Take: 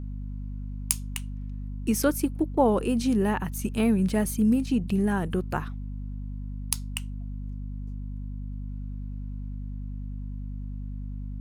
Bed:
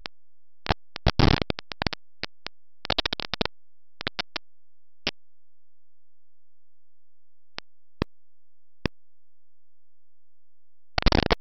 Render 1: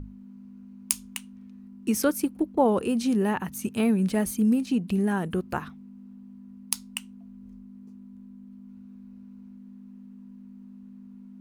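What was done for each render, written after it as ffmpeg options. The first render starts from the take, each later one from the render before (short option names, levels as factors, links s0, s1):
-af "bandreject=f=50:t=h:w=6,bandreject=f=100:t=h:w=6,bandreject=f=150:t=h:w=6"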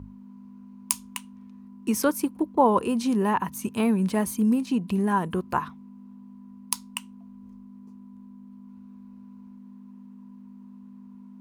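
-af "highpass=61,equalizer=f=1000:w=5:g=14"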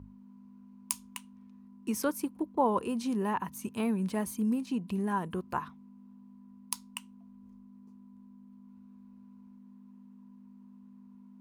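-af "volume=0.422"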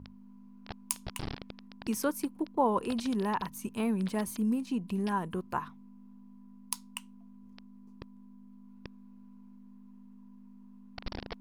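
-filter_complex "[1:a]volume=0.1[s0];[0:a][s0]amix=inputs=2:normalize=0"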